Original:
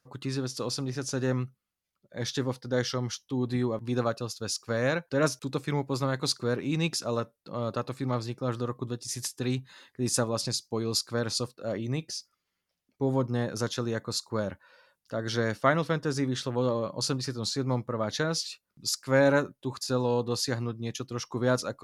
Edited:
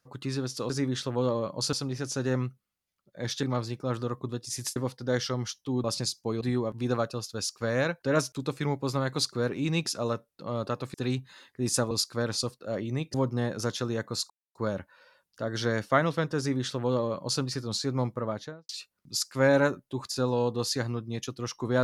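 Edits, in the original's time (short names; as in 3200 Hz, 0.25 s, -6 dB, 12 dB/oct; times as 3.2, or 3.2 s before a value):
8.01–9.34 move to 2.4
10.31–10.88 move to 3.48
12.11–13.11 cut
14.27 insert silence 0.25 s
16.1–17.13 copy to 0.7
17.88–18.41 studio fade out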